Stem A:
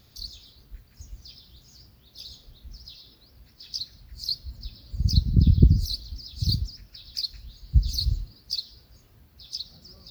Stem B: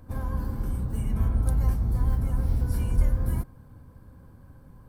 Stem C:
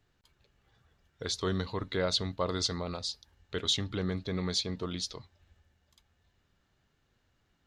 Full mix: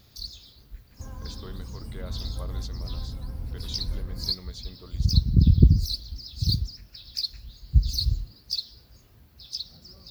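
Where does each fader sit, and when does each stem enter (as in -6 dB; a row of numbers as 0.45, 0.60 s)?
+0.5, -9.5, -12.5 dB; 0.00, 0.90, 0.00 s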